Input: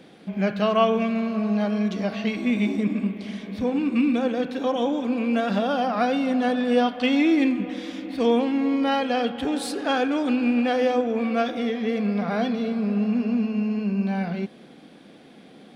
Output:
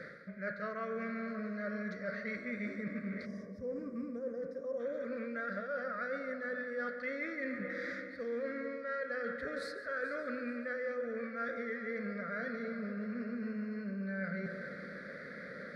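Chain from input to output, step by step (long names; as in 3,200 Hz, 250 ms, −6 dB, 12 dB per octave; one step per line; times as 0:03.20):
drawn EQ curve 180 Hz 0 dB, 320 Hz −11 dB, 570 Hz +10 dB, 840 Hz −27 dB, 1,300 Hz +12 dB, 2,000 Hz +14 dB, 2,900 Hz −24 dB, 4,300 Hz 0 dB, 8,000 Hz −13 dB
convolution reverb RT60 1.5 s, pre-delay 6 ms, DRR 15 dB
reversed playback
downward compressor 6 to 1, threshold −38 dBFS, peak gain reduction 23 dB
reversed playback
echo machine with several playback heads 144 ms, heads first and third, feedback 45%, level −16 dB
gain on a spectral selection 0:03.26–0:04.80, 1,200–4,800 Hz −18 dB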